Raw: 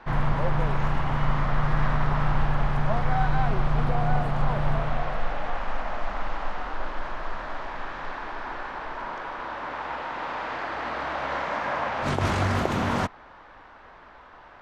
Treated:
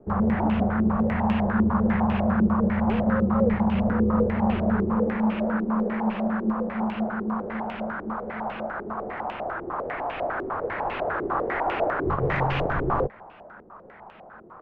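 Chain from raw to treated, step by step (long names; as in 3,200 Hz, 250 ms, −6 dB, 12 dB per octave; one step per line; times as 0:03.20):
hard clipping −16.5 dBFS, distortion −19 dB
frequency shifter −230 Hz
low-pass on a step sequencer 10 Hz 370–2,700 Hz
level −2 dB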